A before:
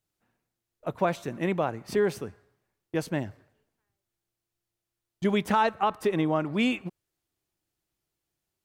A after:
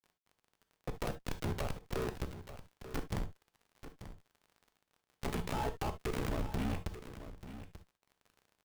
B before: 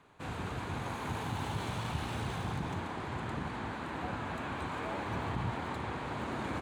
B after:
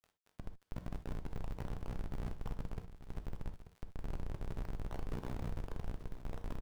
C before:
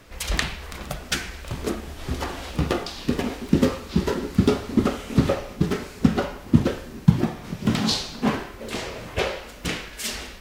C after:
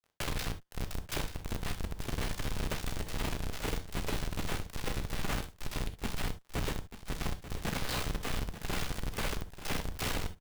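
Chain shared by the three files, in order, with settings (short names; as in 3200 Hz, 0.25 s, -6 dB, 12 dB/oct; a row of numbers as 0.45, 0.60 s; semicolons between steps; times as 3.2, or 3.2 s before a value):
expander -36 dBFS; low shelf 310 Hz -8.5 dB; ring modulator 31 Hz; in parallel at +1.5 dB: compressor 16:1, threshold -37 dBFS; on the sum: Schmitt trigger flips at -27.5 dBFS; crackle 52/s -45 dBFS; high shelf 2300 Hz -9 dB; wrapped overs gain 30.5 dB; on a send: echo 0.887 s -12.5 dB; on the sum: non-linear reverb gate 90 ms flat, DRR 8.5 dB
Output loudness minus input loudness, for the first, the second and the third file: -12.5, -9.0, -12.5 LU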